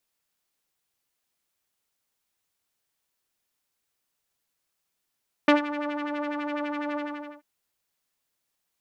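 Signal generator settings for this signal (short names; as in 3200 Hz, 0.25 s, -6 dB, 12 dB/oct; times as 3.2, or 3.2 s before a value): synth patch with filter wobble D5, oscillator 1 saw, sub -0.5 dB, noise -14 dB, filter lowpass, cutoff 1300 Hz, Q 1.8, filter envelope 0.5 oct, attack 3.9 ms, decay 0.13 s, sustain -15 dB, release 0.46 s, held 1.48 s, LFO 12 Hz, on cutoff 0.8 oct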